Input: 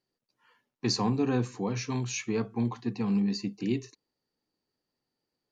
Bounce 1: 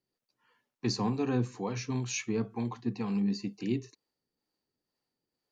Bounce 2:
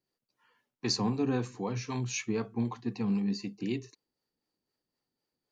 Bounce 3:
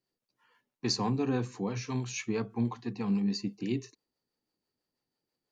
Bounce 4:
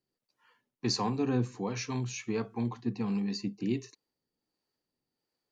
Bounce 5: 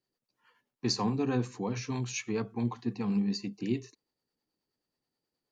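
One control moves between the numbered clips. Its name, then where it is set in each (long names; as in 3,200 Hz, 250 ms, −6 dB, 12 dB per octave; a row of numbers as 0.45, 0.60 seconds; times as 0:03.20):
two-band tremolo in antiphase, speed: 2.1, 3.9, 6.1, 1.4, 9.4 Hertz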